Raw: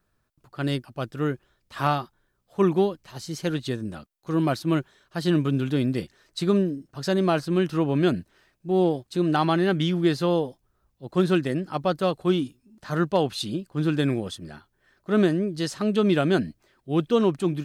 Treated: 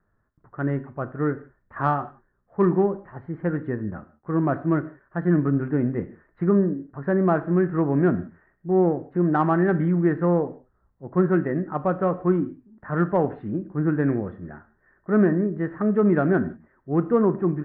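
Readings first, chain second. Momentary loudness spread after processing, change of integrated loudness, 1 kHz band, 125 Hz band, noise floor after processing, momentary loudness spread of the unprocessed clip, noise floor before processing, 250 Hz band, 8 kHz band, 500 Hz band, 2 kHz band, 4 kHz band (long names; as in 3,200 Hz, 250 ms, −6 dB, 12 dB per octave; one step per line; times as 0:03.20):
13 LU, +1.5 dB, +1.5 dB, +2.0 dB, −69 dBFS, 14 LU, −72 dBFS, +2.0 dB, below −35 dB, +1.0 dB, 0.0 dB, below −25 dB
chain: Chebyshev low-pass filter 1,900 Hz, order 5
in parallel at −11 dB: soft clipping −18.5 dBFS, distortion −14 dB
on the sum: reverb whose tail is shaped and stops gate 200 ms falling, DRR 11 dB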